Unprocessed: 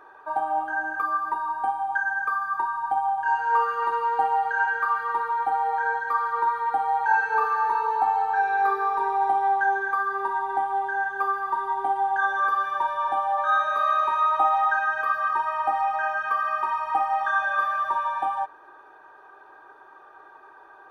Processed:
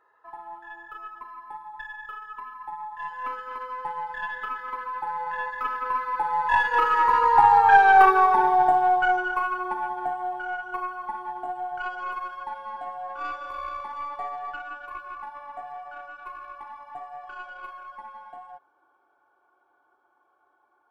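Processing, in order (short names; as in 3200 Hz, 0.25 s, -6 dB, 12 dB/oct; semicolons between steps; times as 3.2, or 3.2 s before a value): tracing distortion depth 0.059 ms; Doppler pass-by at 7.81, 28 m/s, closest 15 m; gain +8.5 dB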